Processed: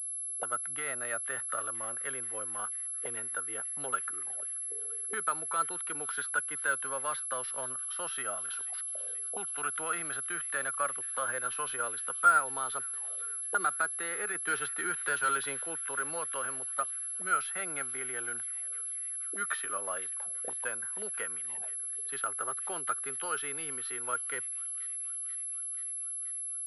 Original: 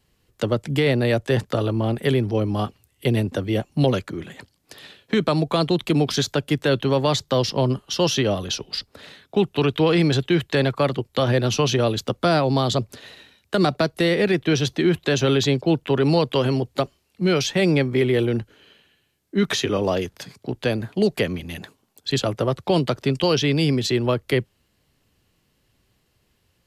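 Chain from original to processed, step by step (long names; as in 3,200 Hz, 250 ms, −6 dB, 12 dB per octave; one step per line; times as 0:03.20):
envelope filter 370–1,400 Hz, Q 8.7, up, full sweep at −24 dBFS
flanger 0.11 Hz, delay 1.3 ms, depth 1.2 ms, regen +62%
on a send: delay with a high-pass on its return 483 ms, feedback 76%, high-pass 2,400 Hz, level −15 dB
0:14.35–0:15.66: on the sum: leveller curve on the samples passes 1
switching amplifier with a slow clock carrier 11,000 Hz
level +8.5 dB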